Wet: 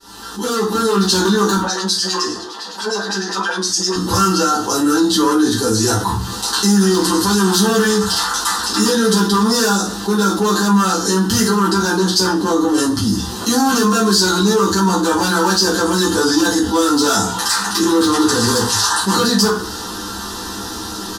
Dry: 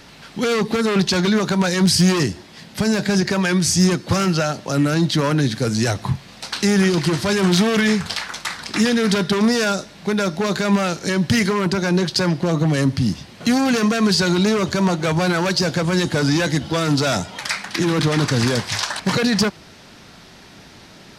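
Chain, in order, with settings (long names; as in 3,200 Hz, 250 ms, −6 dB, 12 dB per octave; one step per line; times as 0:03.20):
fade in at the beginning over 1.10 s
high-shelf EQ 8,400 Hz +10 dB
mains-hum notches 60/120/180/240/300/360 Hz
0:01.57–0:03.96: auto-filter band-pass sine 9.8 Hz 500–5,200 Hz
phaser with its sweep stopped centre 600 Hz, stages 6
double-tracking delay 16 ms −5 dB
convolution reverb RT60 0.40 s, pre-delay 5 ms, DRR −8 dB
envelope flattener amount 50%
level −6 dB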